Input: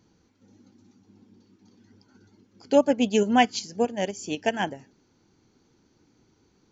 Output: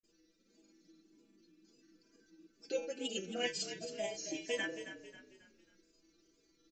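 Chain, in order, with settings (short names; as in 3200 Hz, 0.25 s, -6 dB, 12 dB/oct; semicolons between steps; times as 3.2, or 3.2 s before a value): notch 3300 Hz, Q 12; comb 5.3 ms, depth 94%; de-hum 171.8 Hz, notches 38; in parallel at +2 dB: compressor, threshold -29 dBFS, peak gain reduction 18 dB; on the sum: wow and flutter 150 cents; fixed phaser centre 370 Hz, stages 4; metallic resonator 160 Hz, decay 0.34 s, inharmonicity 0.002; grains, spray 38 ms, pitch spread up and down by 0 st; on a send: frequency-shifting echo 0.271 s, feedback 39%, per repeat -32 Hz, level -11 dB; on the sum: gain +1 dB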